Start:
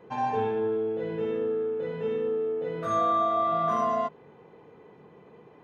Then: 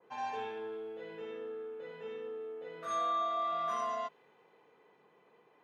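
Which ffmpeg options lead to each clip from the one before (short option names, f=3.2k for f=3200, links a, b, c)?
-af "highpass=f=1k:p=1,adynamicequalizer=threshold=0.00794:dfrequency=1900:dqfactor=0.7:tfrequency=1900:tqfactor=0.7:attack=5:release=100:ratio=0.375:range=3:mode=boostabove:tftype=highshelf,volume=-6dB"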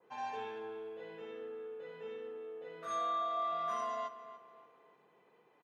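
-filter_complex "[0:a]asplit=2[a][b];[b]adelay=289,lowpass=f=3.3k:p=1,volume=-13dB,asplit=2[c][d];[d]adelay=289,lowpass=f=3.3k:p=1,volume=0.4,asplit=2[e][f];[f]adelay=289,lowpass=f=3.3k:p=1,volume=0.4,asplit=2[g][h];[h]adelay=289,lowpass=f=3.3k:p=1,volume=0.4[i];[a][c][e][g][i]amix=inputs=5:normalize=0,volume=-2.5dB"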